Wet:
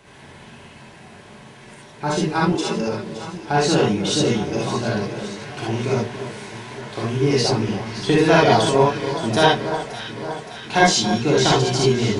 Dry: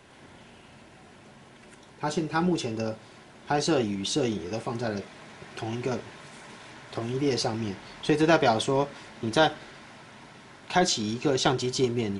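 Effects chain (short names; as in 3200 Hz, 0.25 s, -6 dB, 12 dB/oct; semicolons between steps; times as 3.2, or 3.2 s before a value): 2.47–2.87 Chebyshev high-pass 220 Hz, order 5; echo with dull and thin repeats by turns 0.284 s, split 1500 Hz, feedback 77%, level -10 dB; non-linear reverb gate 90 ms rising, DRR -4.5 dB; gain +2.5 dB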